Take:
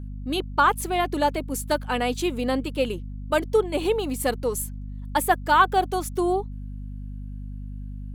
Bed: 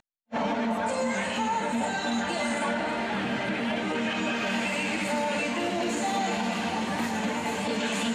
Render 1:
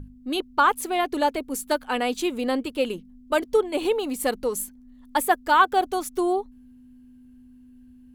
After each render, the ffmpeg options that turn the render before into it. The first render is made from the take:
-af "bandreject=f=50:t=h:w=6,bandreject=f=100:t=h:w=6,bandreject=f=150:t=h:w=6,bandreject=f=200:t=h:w=6"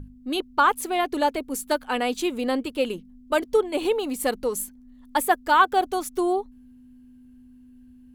-af anull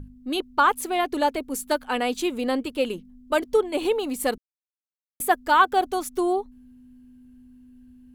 -filter_complex "[0:a]asplit=3[s0][s1][s2];[s0]atrim=end=4.38,asetpts=PTS-STARTPTS,afade=t=out:st=4.376:d=0.004:c=hsin[s3];[s1]atrim=start=4.38:end=5.2,asetpts=PTS-STARTPTS,volume=0[s4];[s2]atrim=start=5.2,asetpts=PTS-STARTPTS,afade=t=in:d=0.004:c=hsin[s5];[s3][s4][s5]concat=n=3:v=0:a=1"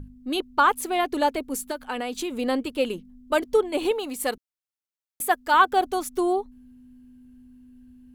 -filter_complex "[0:a]asettb=1/sr,asplit=3[s0][s1][s2];[s0]atrim=end=1.674[s3];[s1]atrim=start=1.67:end=2.31,asetpts=PTS-STARTPTS,afade=t=in:d=0.004:c=qsin,afade=t=out:st=0.636:d=0.004:c=qsin,acompressor=threshold=0.0562:ratio=6:attack=3.2:release=140:knee=1:detection=peak[s4];[s2]atrim=start=2.306[s5];[s3][s4]acrossfade=d=0.004:c1=hsin:c2=qsin[s6];[s6][s5]acrossfade=d=0.004:c1=qsin:c2=hsin,asettb=1/sr,asplit=3[s7][s8][s9];[s7]atrim=end=3.914[s10];[s8]atrim=start=3.91:end=5.54,asetpts=PTS-STARTPTS,afade=t=in:d=0.004:c=qsin,afade=t=out:st=1.626:d=0.004:c=qsin,lowshelf=f=410:g=-7[s11];[s9]atrim=start=5.536[s12];[s10][s11]acrossfade=d=0.004:c1=hsin:c2=qsin[s13];[s13][s12]acrossfade=d=0.004:c1=qsin:c2=hsin"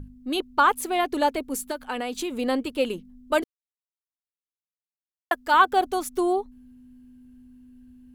-filter_complex "[0:a]asplit=3[s0][s1][s2];[s0]atrim=end=3.44,asetpts=PTS-STARTPTS,afade=t=out:st=3.436:d=0.004:c=hsin[s3];[s1]atrim=start=3.44:end=5.31,asetpts=PTS-STARTPTS,volume=0[s4];[s2]atrim=start=5.31,asetpts=PTS-STARTPTS,afade=t=in:d=0.004:c=hsin[s5];[s3][s4][s5]concat=n=3:v=0:a=1"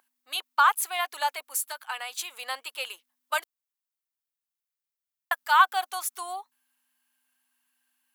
-af "highpass=f=890:w=0.5412,highpass=f=890:w=1.3066,highshelf=f=11000:g=9.5"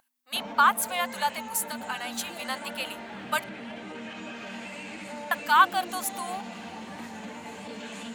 -filter_complex "[1:a]volume=0.282[s0];[0:a][s0]amix=inputs=2:normalize=0"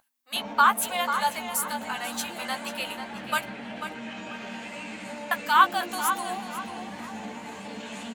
-filter_complex "[0:a]asplit=2[s0][s1];[s1]adelay=14,volume=0.447[s2];[s0][s2]amix=inputs=2:normalize=0,asplit=2[s3][s4];[s4]adelay=491,lowpass=f=4700:p=1,volume=0.376,asplit=2[s5][s6];[s6]adelay=491,lowpass=f=4700:p=1,volume=0.33,asplit=2[s7][s8];[s8]adelay=491,lowpass=f=4700:p=1,volume=0.33,asplit=2[s9][s10];[s10]adelay=491,lowpass=f=4700:p=1,volume=0.33[s11];[s3][s5][s7][s9][s11]amix=inputs=5:normalize=0"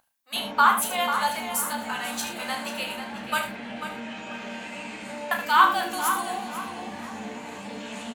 -filter_complex "[0:a]asplit=2[s0][s1];[s1]adelay=34,volume=0.447[s2];[s0][s2]amix=inputs=2:normalize=0,aecho=1:1:75:0.355"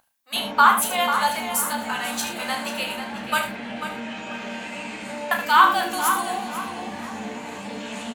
-af "volume=1.5,alimiter=limit=0.708:level=0:latency=1"

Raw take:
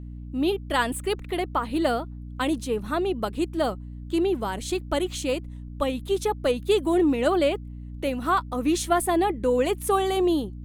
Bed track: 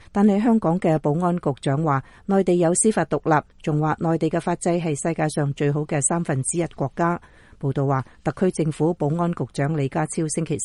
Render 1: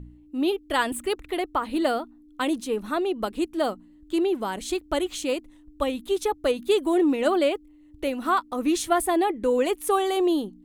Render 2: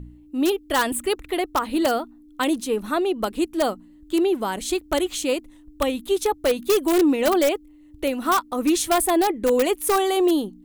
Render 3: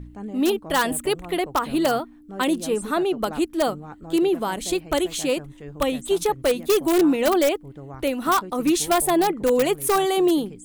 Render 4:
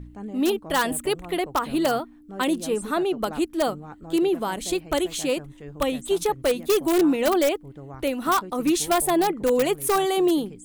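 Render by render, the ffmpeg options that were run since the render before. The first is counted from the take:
-af "bandreject=f=60:t=h:w=4,bandreject=f=120:t=h:w=4,bandreject=f=180:t=h:w=4,bandreject=f=240:t=h:w=4"
-filter_complex "[0:a]asplit=2[s0][s1];[s1]aeval=exprs='(mod(5.62*val(0)+1,2)-1)/5.62':c=same,volume=0.447[s2];[s0][s2]amix=inputs=2:normalize=0,crystalizer=i=0.5:c=0"
-filter_complex "[1:a]volume=0.126[s0];[0:a][s0]amix=inputs=2:normalize=0"
-af "volume=0.841"

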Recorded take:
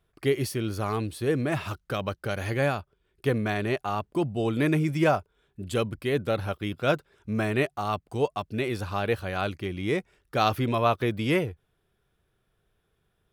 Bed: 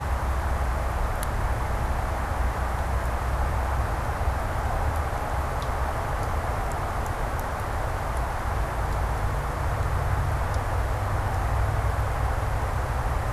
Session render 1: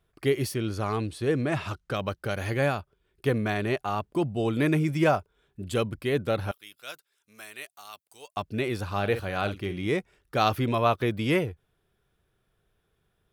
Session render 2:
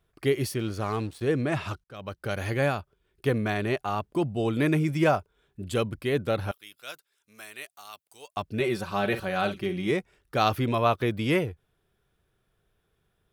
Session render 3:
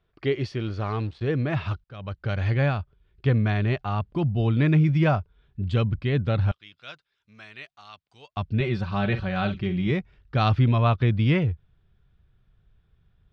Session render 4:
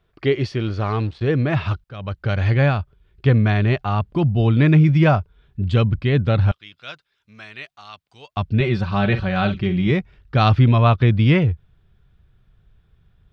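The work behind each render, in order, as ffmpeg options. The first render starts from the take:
-filter_complex "[0:a]asettb=1/sr,asplit=3[s0][s1][s2];[s0]atrim=end=0.544[s3];[s1]atrim=start=0.54:end=1.96,asetpts=PTS-STARTPTS,afade=t=in:d=0.004:c=qsin,afade=t=out:st=1.416:d=0.004:c=qsin,lowpass=9200[s4];[s2]atrim=start=1.956[s5];[s3][s4]acrossfade=d=0.004:c1=hsin:c2=qsin[s6];[s6][s5]acrossfade=d=0.004:c1=qsin:c2=hsin,asettb=1/sr,asplit=3[s7][s8][s9];[s7]atrim=end=6.514[s10];[s8]atrim=start=6.51:end=8.37,asetpts=PTS-STARTPTS,afade=t=in:d=0.004:c=qsin,afade=t=out:st=1.856:d=0.004:c=qsin,aderivative[s11];[s9]atrim=start=8.366[s12];[s10][s11]acrossfade=d=0.004:c1=hsin:c2=qsin[s13];[s13][s12]acrossfade=d=0.004:c1=qsin:c2=hsin,asettb=1/sr,asplit=3[s14][s15][s16];[s14]atrim=end=8.894[s17];[s15]atrim=start=8.89:end=9.87,asetpts=PTS-STARTPTS,afade=t=in:d=0.004:c=qsin,afade=t=out:st=0.976:d=0.004:c=qsin,asplit=2[s18][s19];[s19]adelay=50,volume=0.299[s20];[s18][s20]amix=inputs=2:normalize=0,atrim=end_sample=43218[s21];[s16]atrim=start=9.866[s22];[s17][s21]acrossfade=d=0.004:c1=hsin:c2=qsin[s23];[s23][s22]acrossfade=d=0.004:c1=qsin:c2=hsin"
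-filter_complex "[0:a]asettb=1/sr,asplit=3[s0][s1][s2];[s0]atrim=end=0.594[s3];[s1]atrim=start=0.59:end=1.24,asetpts=PTS-STARTPTS,afade=t=in:d=0.004:c=qsin,afade=t=out:st=0.646:d=0.004:c=qsin,aeval=exprs='sgn(val(0))*max(abs(val(0))-0.00447,0)':c=same[s4];[s2]atrim=start=1.236[s5];[s3][s4]acrossfade=d=0.004:c1=hsin:c2=qsin[s6];[s6][s5]acrossfade=d=0.004:c1=qsin:c2=hsin,asettb=1/sr,asplit=3[s7][s8][s9];[s7]atrim=end=8.604[s10];[s8]atrim=start=8.6:end=9.91,asetpts=PTS-STARTPTS,afade=t=in:d=0.004:c=qsin,afade=t=out:st=1.306:d=0.004:c=qsin,aecho=1:1:5.3:0.65,atrim=end_sample=57771[s11];[s9]atrim=start=9.906[s12];[s10][s11]acrossfade=d=0.004:c1=hsin:c2=qsin[s13];[s13][s12]acrossfade=d=0.004:c1=qsin:c2=hsin,asplit=2[s14][s15];[s14]atrim=end=1.84,asetpts=PTS-STARTPTS,afade=t=out:st=1.836:d=0.004:c=hsin[s16];[s15]atrim=start=1.84,asetpts=PTS-STARTPTS,afade=t=in:d=0.49[s17];[s16][s17]concat=n=2:v=0:a=1"
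-af "lowpass=f=4500:w=0.5412,lowpass=f=4500:w=1.3066,asubboost=boost=5.5:cutoff=160"
-af "volume=2"

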